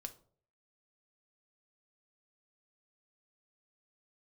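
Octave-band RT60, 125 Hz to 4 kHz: 0.65, 0.55, 0.60, 0.45, 0.30, 0.30 s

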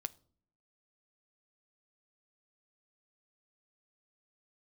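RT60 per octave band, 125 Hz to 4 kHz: 0.80, 0.85, 0.65, 0.45, 0.35, 0.35 s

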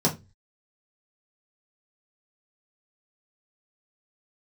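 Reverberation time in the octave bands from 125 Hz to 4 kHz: 0.50, 0.35, 0.25, 0.20, 0.20, 0.20 s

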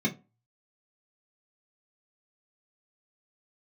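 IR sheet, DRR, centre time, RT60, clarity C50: -4.0 dB, 10 ms, 0.30 s, 17.0 dB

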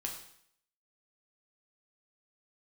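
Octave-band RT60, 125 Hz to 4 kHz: 0.65, 0.65, 0.65, 0.65, 0.65, 0.65 s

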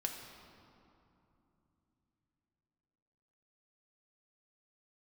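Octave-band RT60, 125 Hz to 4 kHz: 4.7, 4.3, 3.0, 2.9, 2.1, 1.6 s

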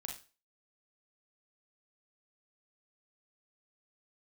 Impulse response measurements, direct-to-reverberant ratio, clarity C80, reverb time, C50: 1.0 dB, 13.5 dB, 0.35 s, 6.5 dB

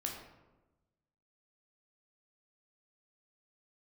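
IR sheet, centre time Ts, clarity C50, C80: 40 ms, 4.5 dB, 6.5 dB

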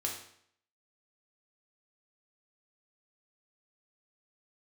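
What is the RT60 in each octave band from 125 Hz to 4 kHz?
0.65, 0.65, 0.65, 0.65, 0.65, 0.60 s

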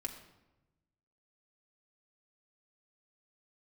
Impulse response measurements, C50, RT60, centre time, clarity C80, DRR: 9.0 dB, 1.0 s, 17 ms, 10.5 dB, 0.5 dB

